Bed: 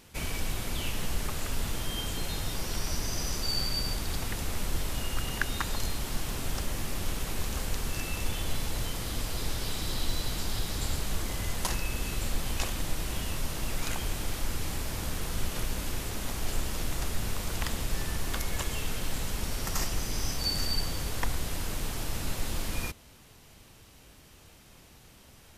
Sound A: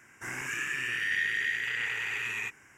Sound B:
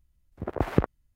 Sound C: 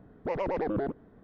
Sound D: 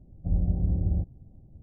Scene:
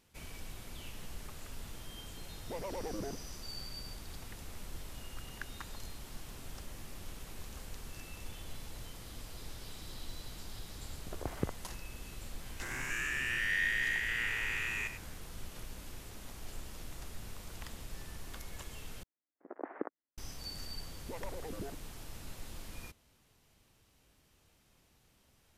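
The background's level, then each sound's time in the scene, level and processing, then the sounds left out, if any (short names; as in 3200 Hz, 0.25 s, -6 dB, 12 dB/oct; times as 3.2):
bed -14 dB
2.24 add C -10.5 dB
10.65 add B -13 dB
12.41 add A -1.5 dB + stepped spectrum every 0.1 s
19.03 replace with B -12.5 dB + elliptic band-pass 280–1900 Hz, stop band 50 dB
20.83 add C -8.5 dB + harmonic tremolo 7.5 Hz, depth 100%, crossover 520 Hz
not used: D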